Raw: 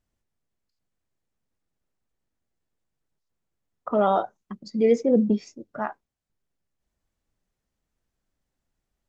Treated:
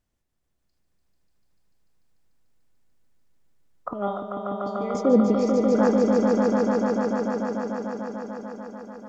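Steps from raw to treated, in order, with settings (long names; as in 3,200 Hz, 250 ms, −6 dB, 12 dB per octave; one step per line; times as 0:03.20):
0:03.93–0:04.95: tuned comb filter 200 Hz, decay 0.4 s, harmonics all, mix 90%
echo that builds up and dies away 147 ms, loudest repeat 5, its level −3.5 dB
level +1.5 dB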